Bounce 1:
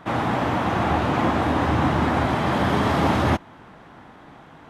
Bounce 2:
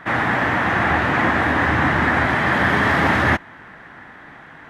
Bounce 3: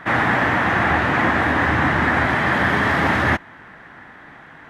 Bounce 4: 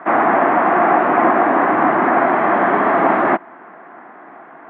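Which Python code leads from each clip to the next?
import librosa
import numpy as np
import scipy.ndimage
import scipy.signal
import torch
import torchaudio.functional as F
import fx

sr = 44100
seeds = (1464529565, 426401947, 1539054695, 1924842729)

y1 = fx.peak_eq(x, sr, hz=1800.0, db=14.5, octaves=0.76)
y2 = fx.rider(y1, sr, range_db=10, speed_s=0.5)
y3 = fx.cabinet(y2, sr, low_hz=210.0, low_slope=24, high_hz=2100.0, hz=(360.0, 690.0, 1100.0, 1800.0), db=(7, 10, 5, -7))
y3 = y3 * librosa.db_to_amplitude(2.0)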